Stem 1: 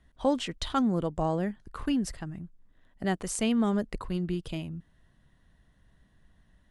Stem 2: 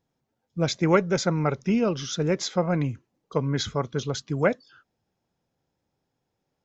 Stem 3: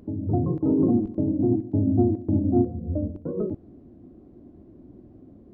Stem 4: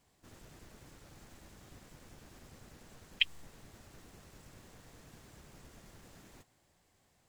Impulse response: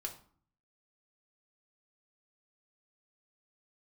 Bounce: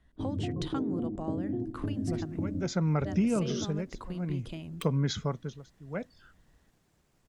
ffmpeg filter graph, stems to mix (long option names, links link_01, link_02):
-filter_complex "[0:a]highshelf=frequency=9500:gain=-6.5,acompressor=threshold=-33dB:ratio=6,volume=-2.5dB,asplit=2[link_01][link_02];[1:a]equalizer=frequency=170:width=1.4:gain=7.5,tremolo=f=0.59:d=0.97,adelay=1500,volume=-1.5dB[link_03];[2:a]agate=range=-33dB:threshold=-42dB:ratio=3:detection=peak,lowpass=1100,acompressor=threshold=-28dB:ratio=6,adelay=100,volume=-2.5dB[link_04];[3:a]aeval=exprs='(mod(5.01*val(0)+1,2)-1)/5.01':channel_layout=same,adelay=1600,volume=-16dB,asplit=2[link_05][link_06];[link_06]volume=-10.5dB[link_07];[link_02]apad=whole_len=248328[link_08];[link_04][link_08]sidechaingate=range=-20dB:threshold=-56dB:ratio=16:detection=peak[link_09];[4:a]atrim=start_sample=2205[link_10];[link_07][link_10]afir=irnorm=-1:irlink=0[link_11];[link_01][link_03][link_09][link_05][link_11]amix=inputs=5:normalize=0,acompressor=threshold=-25dB:ratio=3"